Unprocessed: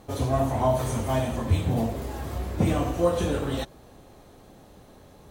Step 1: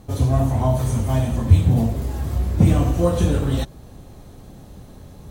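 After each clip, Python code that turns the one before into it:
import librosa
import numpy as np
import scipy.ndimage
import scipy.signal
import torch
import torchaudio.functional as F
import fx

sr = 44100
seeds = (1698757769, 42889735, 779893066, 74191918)

y = fx.bass_treble(x, sr, bass_db=11, treble_db=4)
y = fx.rider(y, sr, range_db=10, speed_s=2.0)
y = F.gain(torch.from_numpy(y), -1.0).numpy()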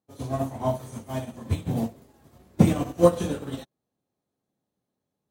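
y = scipy.signal.sosfilt(scipy.signal.butter(2, 190.0, 'highpass', fs=sr, output='sos'), x)
y = fx.upward_expand(y, sr, threshold_db=-43.0, expansion=2.5)
y = F.gain(torch.from_numpy(y), 5.0).numpy()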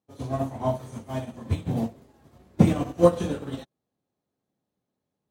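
y = fx.high_shelf(x, sr, hz=7800.0, db=-9.0)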